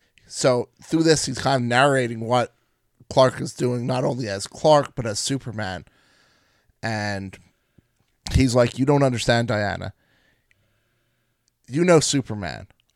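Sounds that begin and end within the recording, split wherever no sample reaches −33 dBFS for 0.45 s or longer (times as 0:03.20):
0:03.11–0:05.87
0:06.83–0:07.34
0:08.26–0:09.90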